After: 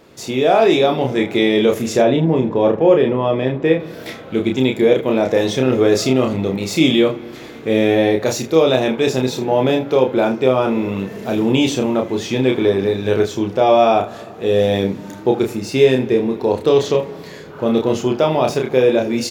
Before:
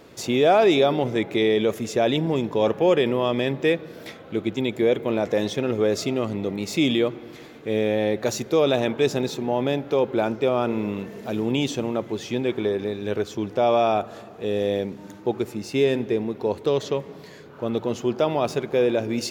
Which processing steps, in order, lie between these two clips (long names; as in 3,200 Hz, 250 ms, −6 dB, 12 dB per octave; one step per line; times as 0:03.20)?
0:02.02–0:03.80: low-pass filter 1,200 Hz 6 dB per octave
ambience of single reflections 31 ms −3.5 dB, 78 ms −15.5 dB
automatic gain control gain up to 10 dB